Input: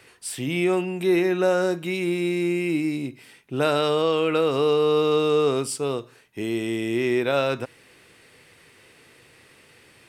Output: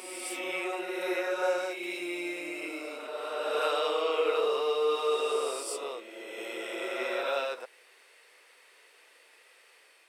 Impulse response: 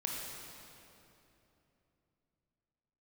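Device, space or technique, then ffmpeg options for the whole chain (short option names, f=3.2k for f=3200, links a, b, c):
ghost voice: -filter_complex "[0:a]areverse[a];[1:a]atrim=start_sample=2205[b];[a][b]afir=irnorm=-1:irlink=0,areverse,highpass=f=480:w=0.5412,highpass=f=480:w=1.3066,volume=-7dB"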